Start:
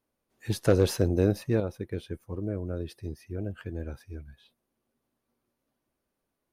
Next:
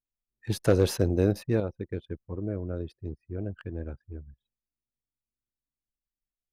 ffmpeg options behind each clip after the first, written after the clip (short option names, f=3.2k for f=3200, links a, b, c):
-af "anlmdn=0.0631"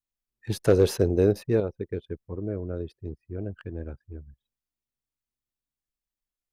-af "adynamicequalizer=threshold=0.00891:dfrequency=420:dqfactor=4.1:tfrequency=420:tqfactor=4.1:attack=5:release=100:ratio=0.375:range=4:mode=boostabove:tftype=bell"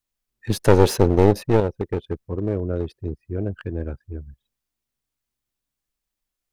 -af "aeval=exprs='clip(val(0),-1,0.0237)':c=same,volume=7.5dB"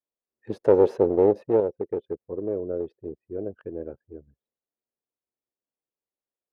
-af "bandpass=f=480:t=q:w=1.7:csg=0"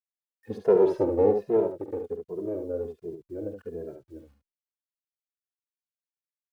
-filter_complex "[0:a]acrusher=bits=10:mix=0:aa=0.000001,aecho=1:1:47|71:0.251|0.447,asplit=2[a][b];[b]adelay=2.5,afreqshift=-1.3[c];[a][c]amix=inputs=2:normalize=1"